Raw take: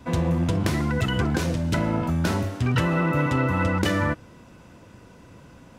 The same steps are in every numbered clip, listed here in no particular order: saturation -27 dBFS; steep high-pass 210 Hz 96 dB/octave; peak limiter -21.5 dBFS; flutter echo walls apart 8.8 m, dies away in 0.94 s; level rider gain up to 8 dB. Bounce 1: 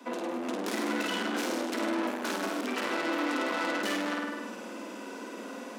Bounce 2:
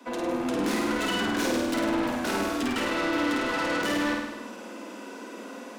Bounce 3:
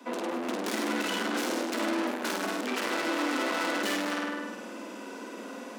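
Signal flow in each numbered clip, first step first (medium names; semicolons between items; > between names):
peak limiter > level rider > flutter echo > saturation > steep high-pass; steep high-pass > peak limiter > level rider > saturation > flutter echo; level rider > flutter echo > saturation > peak limiter > steep high-pass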